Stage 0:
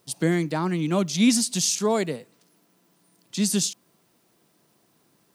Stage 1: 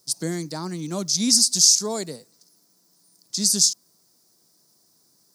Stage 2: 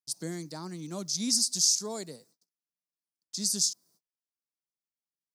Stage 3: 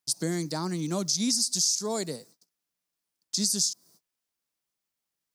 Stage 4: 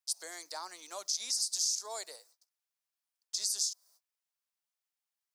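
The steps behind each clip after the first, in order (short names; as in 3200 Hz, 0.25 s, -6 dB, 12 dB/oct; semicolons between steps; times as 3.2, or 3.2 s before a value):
resonant high shelf 3800 Hz +10 dB, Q 3; gain -5.5 dB
gate -53 dBFS, range -32 dB; gain -9 dB
in parallel at +2.5 dB: limiter -17.5 dBFS, peak gain reduction 7 dB; on the sum: compressor 3:1, threshold -27 dBFS, peak gain reduction 9.5 dB; gain +2 dB
HPF 630 Hz 24 dB/oct; gain -6 dB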